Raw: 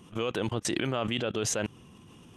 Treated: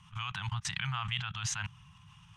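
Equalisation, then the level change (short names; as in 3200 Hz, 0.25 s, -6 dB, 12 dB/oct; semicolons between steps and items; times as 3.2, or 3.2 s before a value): inverse Chebyshev band-stop 240–600 Hz, stop band 40 dB; air absorption 70 m; 0.0 dB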